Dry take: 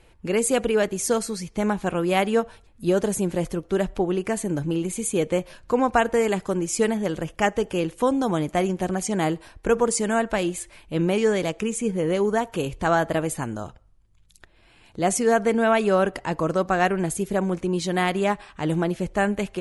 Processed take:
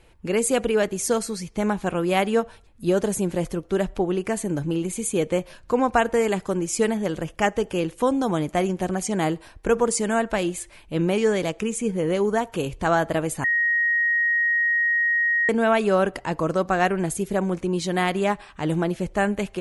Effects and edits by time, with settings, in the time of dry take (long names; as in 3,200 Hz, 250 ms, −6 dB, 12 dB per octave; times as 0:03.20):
0:13.44–0:15.49: beep over 1,880 Hz −18 dBFS